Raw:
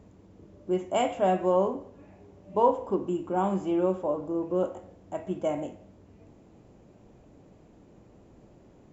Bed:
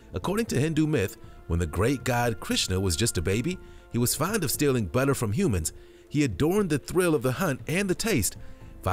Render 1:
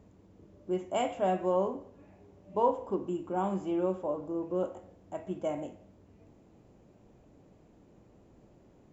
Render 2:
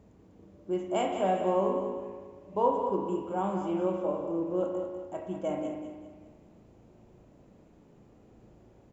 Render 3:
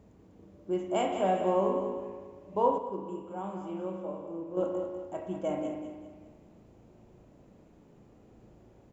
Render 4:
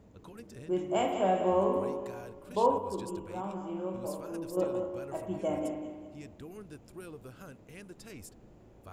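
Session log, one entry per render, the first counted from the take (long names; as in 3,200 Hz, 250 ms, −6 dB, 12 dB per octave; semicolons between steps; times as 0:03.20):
level −4.5 dB
repeating echo 197 ms, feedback 41%, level −8 dB; spring reverb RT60 1.1 s, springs 36 ms, chirp 45 ms, DRR 4.5 dB
0:02.78–0:04.57: tuned comb filter 64 Hz, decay 1.8 s
mix in bed −23 dB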